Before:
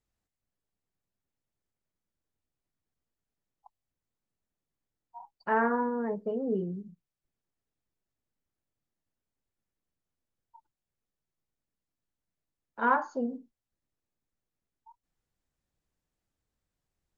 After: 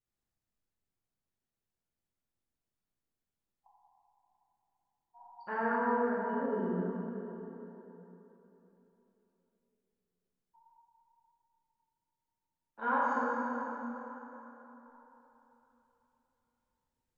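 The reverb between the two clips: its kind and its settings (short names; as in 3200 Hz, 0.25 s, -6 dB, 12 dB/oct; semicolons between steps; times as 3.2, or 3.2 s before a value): plate-style reverb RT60 3.7 s, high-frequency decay 0.7×, DRR -8 dB; gain -11 dB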